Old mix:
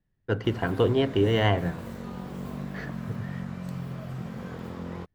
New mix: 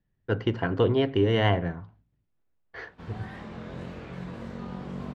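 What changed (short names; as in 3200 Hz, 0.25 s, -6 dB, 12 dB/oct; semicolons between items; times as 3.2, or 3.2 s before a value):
background: entry +2.55 s; master: add LPF 4900 Hz 12 dB/oct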